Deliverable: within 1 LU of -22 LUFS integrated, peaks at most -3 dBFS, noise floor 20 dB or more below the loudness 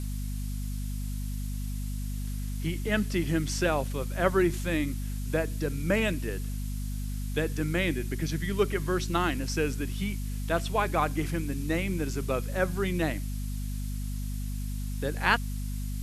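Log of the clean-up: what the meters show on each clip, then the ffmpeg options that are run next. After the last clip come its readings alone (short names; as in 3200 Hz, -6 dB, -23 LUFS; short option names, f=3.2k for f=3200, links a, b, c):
hum 50 Hz; harmonics up to 250 Hz; hum level -30 dBFS; noise floor -33 dBFS; noise floor target -51 dBFS; loudness -30.5 LUFS; peak -7.5 dBFS; loudness target -22.0 LUFS
-> -af "bandreject=f=50:t=h:w=6,bandreject=f=100:t=h:w=6,bandreject=f=150:t=h:w=6,bandreject=f=200:t=h:w=6,bandreject=f=250:t=h:w=6"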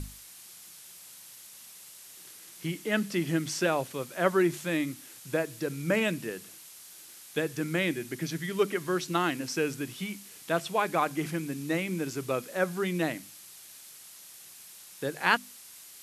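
hum none; noise floor -50 dBFS; noise floor target -51 dBFS
-> -af "afftdn=nr=6:nf=-50"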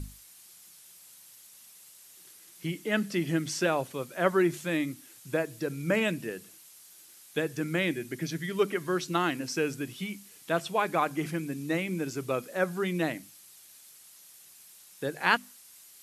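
noise floor -54 dBFS; loudness -30.5 LUFS; peak -7.5 dBFS; loudness target -22.0 LUFS
-> -af "volume=8.5dB,alimiter=limit=-3dB:level=0:latency=1"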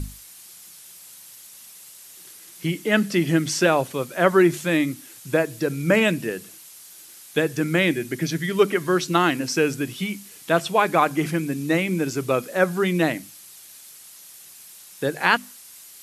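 loudness -22.0 LUFS; peak -3.0 dBFS; noise floor -45 dBFS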